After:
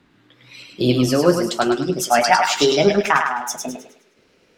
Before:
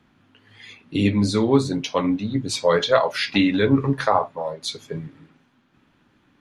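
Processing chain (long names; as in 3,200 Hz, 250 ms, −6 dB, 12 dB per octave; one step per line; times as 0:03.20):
gliding playback speed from 113% → 167%
feedback echo with a high-pass in the loop 104 ms, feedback 38%, high-pass 730 Hz, level −4 dB
level +2.5 dB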